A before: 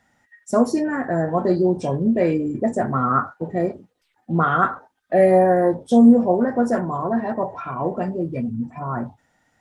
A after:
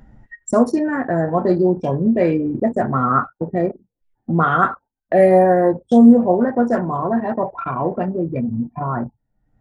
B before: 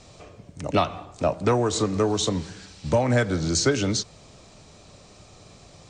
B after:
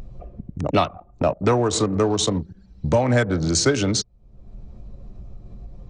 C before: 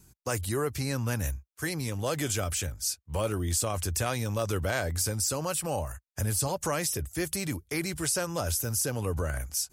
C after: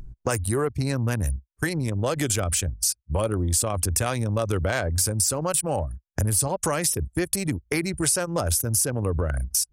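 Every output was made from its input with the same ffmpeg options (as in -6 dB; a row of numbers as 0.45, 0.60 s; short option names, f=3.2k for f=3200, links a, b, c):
-af "adynamicequalizer=threshold=0.00316:dfrequency=9400:dqfactor=5.1:tfrequency=9400:tqfactor=5.1:attack=5:release=100:ratio=0.375:range=3.5:mode=boostabove:tftype=bell,anlmdn=39.8,acompressor=mode=upward:threshold=-20dB:ratio=2.5,volume=2.5dB"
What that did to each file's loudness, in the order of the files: +2.5, +2.5, +5.5 LU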